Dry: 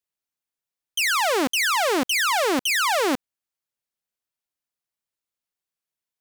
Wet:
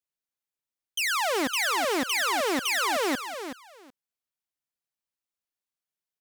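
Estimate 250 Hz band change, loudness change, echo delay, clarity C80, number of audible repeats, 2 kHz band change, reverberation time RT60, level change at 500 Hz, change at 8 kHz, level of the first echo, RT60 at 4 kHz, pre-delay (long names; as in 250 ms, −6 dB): −4.5 dB, −4.5 dB, 375 ms, no reverb audible, 2, −4.5 dB, no reverb audible, −4.5 dB, −4.5 dB, −9.5 dB, no reverb audible, no reverb audible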